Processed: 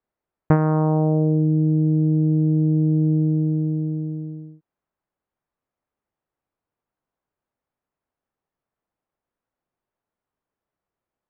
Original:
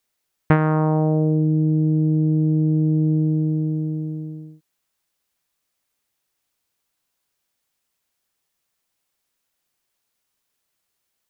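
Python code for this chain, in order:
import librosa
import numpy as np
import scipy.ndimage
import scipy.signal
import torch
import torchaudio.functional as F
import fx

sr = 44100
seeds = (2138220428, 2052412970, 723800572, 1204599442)

y = scipy.signal.sosfilt(scipy.signal.butter(2, 1100.0, 'lowpass', fs=sr, output='sos'), x)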